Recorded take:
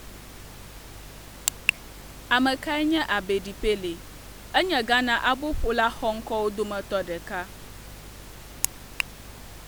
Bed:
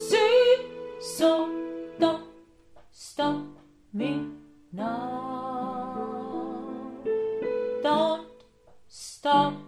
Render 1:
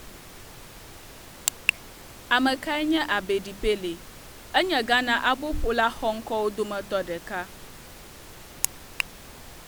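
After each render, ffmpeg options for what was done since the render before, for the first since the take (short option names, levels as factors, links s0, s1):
-af "bandreject=f=50:t=h:w=4,bandreject=f=100:t=h:w=4,bandreject=f=150:t=h:w=4,bandreject=f=200:t=h:w=4,bandreject=f=250:t=h:w=4,bandreject=f=300:t=h:w=4"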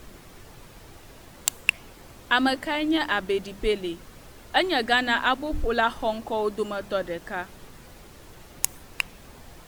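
-af "afftdn=nr=6:nf=-46"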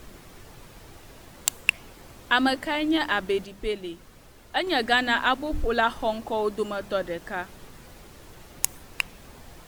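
-filter_complex "[0:a]asplit=3[s0][s1][s2];[s0]atrim=end=3.452[s3];[s1]atrim=start=3.448:end=4.672,asetpts=PTS-STARTPTS,volume=0.596[s4];[s2]atrim=start=4.668[s5];[s3][s4]acrossfade=d=0.004:c1=hsin:c2=hsin[s6];[s6][s5]acrossfade=d=0.004:c1=hsin:c2=hsin"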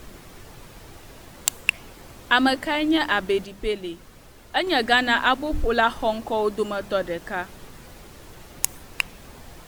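-af "volume=1.41,alimiter=limit=0.708:level=0:latency=1"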